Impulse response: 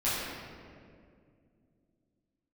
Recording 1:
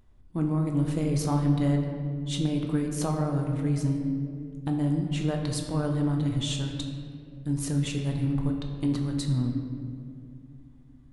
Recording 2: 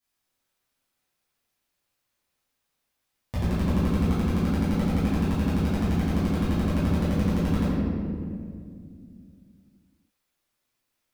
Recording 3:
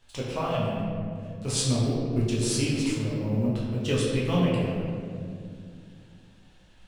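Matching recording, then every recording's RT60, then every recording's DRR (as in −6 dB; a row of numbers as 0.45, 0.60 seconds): 2; 2.3, 2.2, 2.2 seconds; 2.0, −12.5, −6.5 decibels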